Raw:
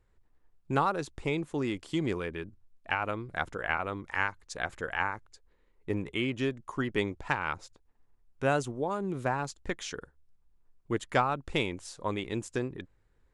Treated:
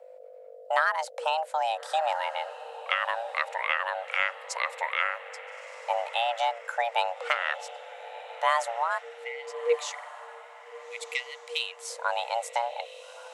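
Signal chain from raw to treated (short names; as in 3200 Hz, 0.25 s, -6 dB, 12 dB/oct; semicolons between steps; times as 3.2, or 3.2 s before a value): 8.98–9.72 RIAA curve playback; hum 50 Hz, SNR 23 dB; in parallel at +1.5 dB: compressor, threshold -36 dBFS, peak gain reduction 17.5 dB; on the sum: frequency shift +460 Hz; 8.98–11.89 spectral delete 480–1900 Hz; diffused feedback echo 1.318 s, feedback 44%, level -14.5 dB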